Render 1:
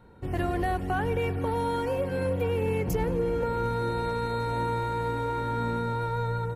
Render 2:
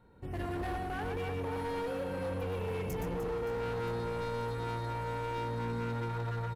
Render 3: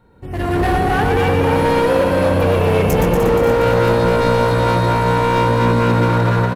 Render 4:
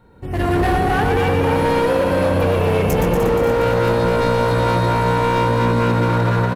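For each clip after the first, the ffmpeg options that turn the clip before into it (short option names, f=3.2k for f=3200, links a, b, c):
-filter_complex "[0:a]asplit=2[a][b];[b]aecho=0:1:120|300|570|975|1582:0.631|0.398|0.251|0.158|0.1[c];[a][c]amix=inputs=2:normalize=0,volume=24.5dB,asoftclip=hard,volume=-24.5dB,volume=-8dB"
-filter_complex "[0:a]dynaudnorm=f=280:g=3:m=11.5dB,asplit=8[a][b][c][d][e][f][g][h];[b]adelay=237,afreqshift=62,volume=-7dB[i];[c]adelay=474,afreqshift=124,volume=-12dB[j];[d]adelay=711,afreqshift=186,volume=-17.1dB[k];[e]adelay=948,afreqshift=248,volume=-22.1dB[l];[f]adelay=1185,afreqshift=310,volume=-27.1dB[m];[g]adelay=1422,afreqshift=372,volume=-32.2dB[n];[h]adelay=1659,afreqshift=434,volume=-37.2dB[o];[a][i][j][k][l][m][n][o]amix=inputs=8:normalize=0,volume=8.5dB"
-af "acompressor=threshold=-16dB:ratio=4,volume=2dB"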